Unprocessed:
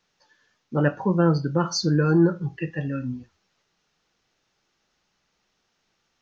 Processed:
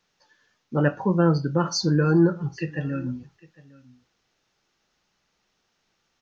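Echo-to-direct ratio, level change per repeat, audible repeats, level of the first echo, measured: -23.0 dB, no regular repeats, 1, -23.0 dB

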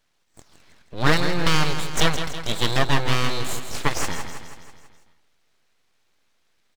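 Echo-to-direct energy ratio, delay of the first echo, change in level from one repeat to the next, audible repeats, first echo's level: -7.5 dB, 163 ms, -5.0 dB, 6, -9.0 dB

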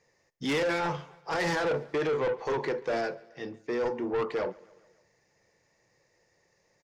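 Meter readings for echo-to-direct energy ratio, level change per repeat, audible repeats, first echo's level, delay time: -22.0 dB, -5.0 dB, 3, -23.5 dB, 141 ms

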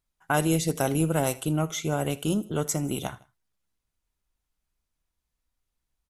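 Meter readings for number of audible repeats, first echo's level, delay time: 2, -21.0 dB, 79 ms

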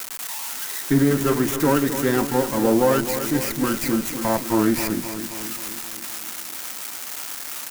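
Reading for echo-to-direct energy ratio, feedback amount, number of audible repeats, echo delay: -8.0 dB, 60%, 6, 263 ms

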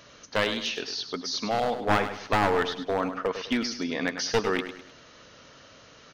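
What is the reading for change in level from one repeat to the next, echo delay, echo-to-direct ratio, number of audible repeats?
-8.5 dB, 102 ms, -9.5 dB, 3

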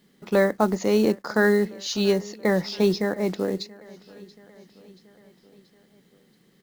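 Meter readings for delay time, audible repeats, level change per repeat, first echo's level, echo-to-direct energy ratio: 680 ms, 3, -4.5 dB, -22.0 dB, -20.5 dB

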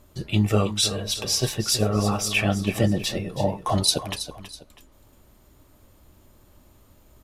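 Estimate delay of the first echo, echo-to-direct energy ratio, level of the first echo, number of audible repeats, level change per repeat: 325 ms, -11.5 dB, -12.0 dB, 2, -9.0 dB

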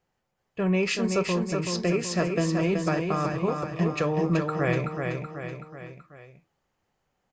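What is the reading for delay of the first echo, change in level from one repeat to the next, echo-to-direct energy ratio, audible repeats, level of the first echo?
378 ms, -5.5 dB, -3.5 dB, 4, -5.0 dB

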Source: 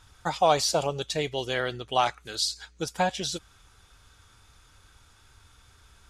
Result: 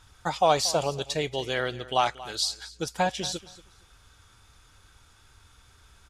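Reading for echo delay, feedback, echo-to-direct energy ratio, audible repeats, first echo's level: 232 ms, 19%, -18.0 dB, 2, -18.0 dB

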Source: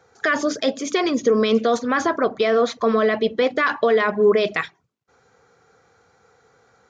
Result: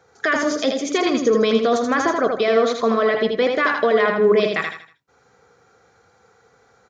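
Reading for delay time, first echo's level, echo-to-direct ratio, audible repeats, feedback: 80 ms, -4.5 dB, -4.0 dB, 4, 34%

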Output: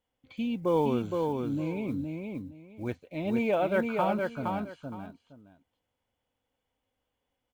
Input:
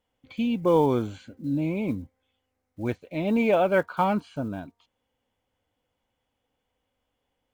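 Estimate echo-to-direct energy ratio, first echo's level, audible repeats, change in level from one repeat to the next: -4.0 dB, -4.0 dB, 2, -13.5 dB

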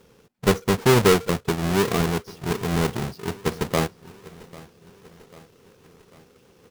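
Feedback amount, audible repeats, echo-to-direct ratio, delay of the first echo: 57%, 3, -19.5 dB, 795 ms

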